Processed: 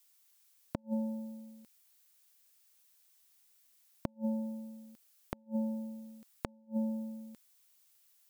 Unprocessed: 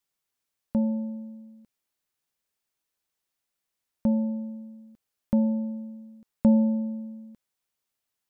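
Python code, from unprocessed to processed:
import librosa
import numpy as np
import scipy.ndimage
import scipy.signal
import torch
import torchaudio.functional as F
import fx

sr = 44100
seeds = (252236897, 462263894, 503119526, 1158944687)

y = fx.tilt_eq(x, sr, slope=3.5)
y = fx.gate_flip(y, sr, shuts_db=-23.0, range_db=-38)
y = F.gain(torch.from_numpy(y), 4.0).numpy()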